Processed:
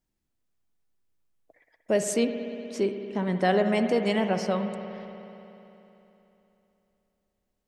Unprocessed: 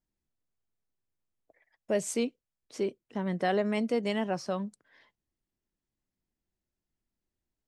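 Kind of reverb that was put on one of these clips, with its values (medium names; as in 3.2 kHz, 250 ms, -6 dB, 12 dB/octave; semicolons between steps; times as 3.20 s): spring tank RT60 3.3 s, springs 60 ms, chirp 45 ms, DRR 6.5 dB; trim +4.5 dB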